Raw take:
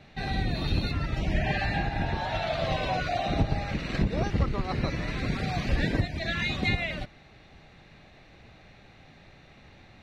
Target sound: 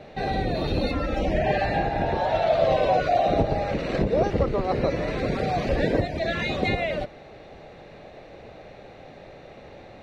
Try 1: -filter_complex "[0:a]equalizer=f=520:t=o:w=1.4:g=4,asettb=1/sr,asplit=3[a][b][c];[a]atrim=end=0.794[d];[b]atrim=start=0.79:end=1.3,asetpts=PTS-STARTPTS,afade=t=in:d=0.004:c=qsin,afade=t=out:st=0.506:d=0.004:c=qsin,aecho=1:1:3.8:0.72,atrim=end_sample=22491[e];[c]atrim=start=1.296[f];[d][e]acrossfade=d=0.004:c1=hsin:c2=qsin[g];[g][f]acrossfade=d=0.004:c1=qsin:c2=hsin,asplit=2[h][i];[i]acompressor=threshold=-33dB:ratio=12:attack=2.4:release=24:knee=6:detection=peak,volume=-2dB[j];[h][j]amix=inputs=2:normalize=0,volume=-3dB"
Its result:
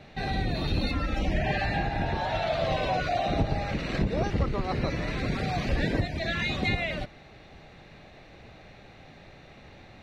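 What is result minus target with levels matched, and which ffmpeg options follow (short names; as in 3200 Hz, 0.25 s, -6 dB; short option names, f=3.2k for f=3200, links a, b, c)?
500 Hz band -4.5 dB
-filter_complex "[0:a]equalizer=f=520:t=o:w=1.4:g=15.5,asettb=1/sr,asplit=3[a][b][c];[a]atrim=end=0.794[d];[b]atrim=start=0.79:end=1.3,asetpts=PTS-STARTPTS,afade=t=in:d=0.004:c=qsin,afade=t=out:st=0.506:d=0.004:c=qsin,aecho=1:1:3.8:0.72,atrim=end_sample=22491[e];[c]atrim=start=1.296[f];[d][e]acrossfade=d=0.004:c1=hsin:c2=qsin[g];[g][f]acrossfade=d=0.004:c1=qsin:c2=hsin,asplit=2[h][i];[i]acompressor=threshold=-33dB:ratio=12:attack=2.4:release=24:knee=6:detection=peak,volume=-2dB[j];[h][j]amix=inputs=2:normalize=0,volume=-3dB"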